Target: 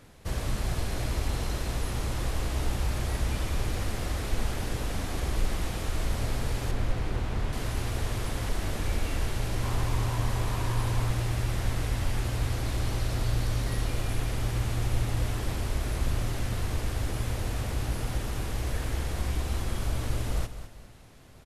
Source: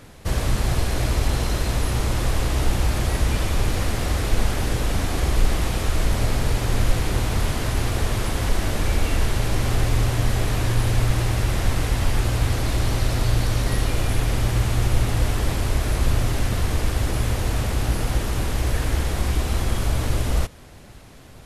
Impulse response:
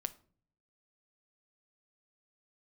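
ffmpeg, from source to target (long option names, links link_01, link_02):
-filter_complex "[0:a]asettb=1/sr,asplit=3[link_01][link_02][link_03];[link_01]atrim=end=6.714[link_04];[link_02]atrim=start=6.71:end=7.53,asetpts=PTS-STARTPTS,afade=type=in:duration=0.004:curve=qsin,afade=type=out:start_time=0.816:duration=0.004:curve=qsin,lowpass=frequency=2600:poles=1[link_05];[link_03]atrim=start=7.526[link_06];[link_04][link_05]acrossfade=duration=0.004:curve1=hsin:curve2=qsin[link_07];[link_07][link_06]acrossfade=duration=0.004:curve1=qsin:curve2=hsin,asettb=1/sr,asplit=3[link_08][link_09][link_10];[link_08]atrim=end=9.624[link_11];[link_09]atrim=start=9.62:end=11.11,asetpts=PTS-STARTPTS,afade=type=in:duration=0.004:curve=qsin,afade=type=out:start_time=1.486:duration=0.004:curve=qsin,equalizer=frequency=990:width=4:gain=9[link_12];[link_10]atrim=start=11.106[link_13];[link_11][link_12]acrossfade=duration=0.004:curve1=hsin:curve2=qsin[link_14];[link_14][link_13]acrossfade=duration=0.004:curve1=qsin:curve2=hsin,aecho=1:1:207|414|621|828:0.251|0.0929|0.0344|0.0127,volume=-8.5dB"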